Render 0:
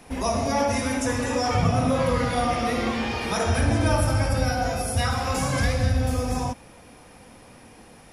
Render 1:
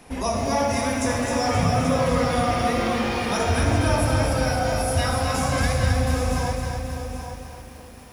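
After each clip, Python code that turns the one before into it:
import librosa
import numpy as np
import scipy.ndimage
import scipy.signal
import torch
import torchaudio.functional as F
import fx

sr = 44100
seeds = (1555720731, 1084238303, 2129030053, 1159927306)

y = fx.echo_feedback(x, sr, ms=829, feedback_pct=18, wet_db=-10.0)
y = fx.echo_crushed(y, sr, ms=263, feedback_pct=55, bits=8, wet_db=-5.5)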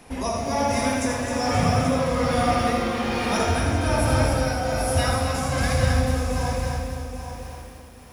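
y = x * (1.0 - 0.34 / 2.0 + 0.34 / 2.0 * np.cos(2.0 * np.pi * 1.2 * (np.arange(len(x)) / sr)))
y = y + 10.0 ** (-6.5 / 20.0) * np.pad(y, (int(81 * sr / 1000.0), 0))[:len(y)]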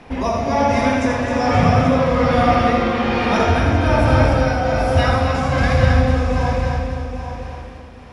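y = scipy.signal.sosfilt(scipy.signal.butter(2, 3500.0, 'lowpass', fs=sr, output='sos'), x)
y = y * librosa.db_to_amplitude(6.5)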